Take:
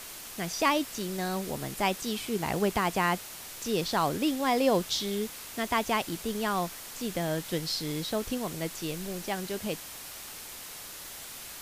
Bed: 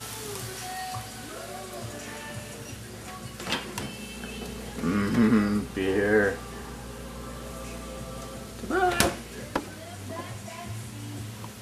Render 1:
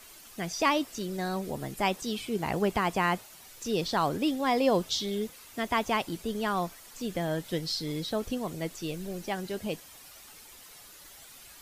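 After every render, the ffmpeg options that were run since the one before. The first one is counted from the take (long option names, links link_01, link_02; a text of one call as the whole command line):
ffmpeg -i in.wav -af "afftdn=noise_reduction=10:noise_floor=-43" out.wav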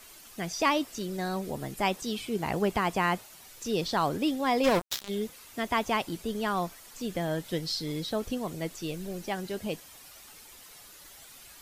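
ffmpeg -i in.wav -filter_complex "[0:a]asplit=3[link_01][link_02][link_03];[link_01]afade=type=out:start_time=4.63:duration=0.02[link_04];[link_02]acrusher=bits=3:mix=0:aa=0.5,afade=type=in:start_time=4.63:duration=0.02,afade=type=out:start_time=5.08:duration=0.02[link_05];[link_03]afade=type=in:start_time=5.08:duration=0.02[link_06];[link_04][link_05][link_06]amix=inputs=3:normalize=0" out.wav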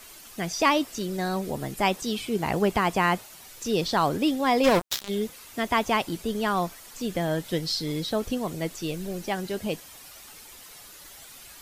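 ffmpeg -i in.wav -af "volume=4dB" out.wav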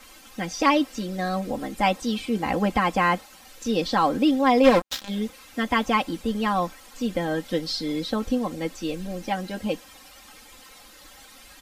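ffmpeg -i in.wav -af "lowpass=frequency=4000:poles=1,aecho=1:1:3.8:0.86" out.wav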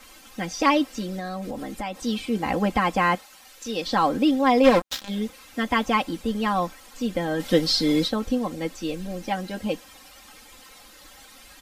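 ffmpeg -i in.wav -filter_complex "[0:a]asettb=1/sr,asplit=3[link_01][link_02][link_03];[link_01]atrim=end=1.034[link_04];[link_02]atrim=start=1.03:end=1.98,asetpts=PTS-STARTPTS,afade=type=in:duration=0.004:curve=qsin,afade=type=out:start_time=0.946:duration=0.004:curve=qsin,acompressor=threshold=-27dB:ratio=6:attack=3.2:release=140:knee=1:detection=peak[link_05];[link_03]atrim=start=1.976[link_06];[link_04][link_05]acrossfade=duration=0.004:curve1=hsin:curve2=qsin[link_07];[link_07][link_06]acrossfade=duration=0.004:curve1=qsin:curve2=hsin,asettb=1/sr,asplit=3[link_08][link_09][link_10];[link_08]atrim=end=3.154[link_11];[link_09]atrim=start=3.15:end=3.87,asetpts=PTS-STARTPTS,afade=type=in:duration=0.004:curve=qsin,afade=type=out:start_time=0.716:duration=0.004:curve=qsin,lowshelf=frequency=450:gain=-9.5[link_12];[link_10]atrim=start=3.866[link_13];[link_11][link_12]acrossfade=duration=0.004:curve1=hsin:curve2=qsin[link_14];[link_14][link_13]acrossfade=duration=0.004:curve1=qsin:curve2=hsin,asplit=3[link_15][link_16][link_17];[link_15]afade=type=out:start_time=7.39:duration=0.02[link_18];[link_16]acontrast=78,afade=type=in:start_time=7.39:duration=0.02,afade=type=out:start_time=8.07:duration=0.02[link_19];[link_17]afade=type=in:start_time=8.07:duration=0.02[link_20];[link_18][link_19][link_20]amix=inputs=3:normalize=0" out.wav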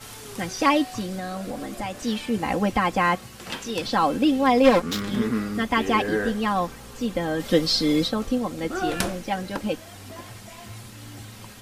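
ffmpeg -i in.wav -i bed.wav -filter_complex "[1:a]volume=-4dB[link_01];[0:a][link_01]amix=inputs=2:normalize=0" out.wav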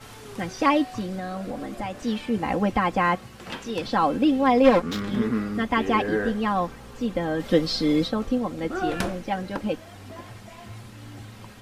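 ffmpeg -i in.wav -af "highshelf=frequency=4100:gain=-10.5" out.wav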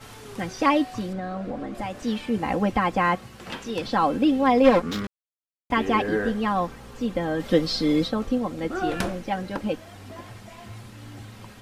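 ffmpeg -i in.wav -filter_complex "[0:a]asettb=1/sr,asplit=3[link_01][link_02][link_03];[link_01]atrim=end=1.134[link_04];[link_02]atrim=start=1.13:end=1.75,asetpts=PTS-STARTPTS,afade=type=in:duration=0.004:curve=qsin,afade=type=out:start_time=0.616:duration=0.004:curve=qsin,aemphasis=mode=reproduction:type=75fm[link_05];[link_03]atrim=start=1.746[link_06];[link_04][link_05]acrossfade=duration=0.004:curve1=hsin:curve2=qsin[link_07];[link_07][link_06]acrossfade=duration=0.004:curve1=qsin:curve2=hsin,asplit=3[link_08][link_09][link_10];[link_08]atrim=end=5.07,asetpts=PTS-STARTPTS,afade=type=out:start_time=5.066:duration=0.004:curve=hsin[link_11];[link_09]atrim=start=5.07:end=5.7,asetpts=PTS-STARTPTS,volume=0[link_12];[link_10]atrim=start=5.7,asetpts=PTS-STARTPTS,afade=type=in:duration=0.004:curve=hsin[link_13];[link_11][link_12][link_13]concat=n=3:v=0:a=1" out.wav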